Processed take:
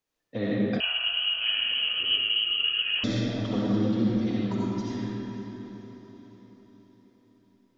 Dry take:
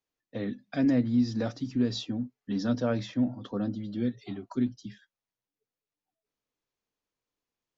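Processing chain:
compressor whose output falls as the input rises −31 dBFS, ratio −0.5
feedback delay with all-pass diffusion 505 ms, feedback 51%, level −13.5 dB
comb and all-pass reverb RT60 3.4 s, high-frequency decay 0.55×, pre-delay 30 ms, DRR −6.5 dB
0:00.80–0:03.04: voice inversion scrambler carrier 3,100 Hz
level −1 dB

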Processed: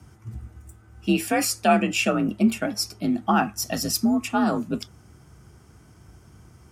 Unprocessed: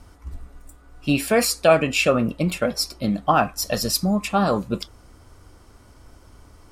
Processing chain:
thirty-one-band graphic EQ 160 Hz +10 dB, 500 Hz −8 dB, 1,000 Hz −4 dB, 4,000 Hz −7 dB, 6,300 Hz +3 dB
frequency shifter +48 Hz
level −2.5 dB

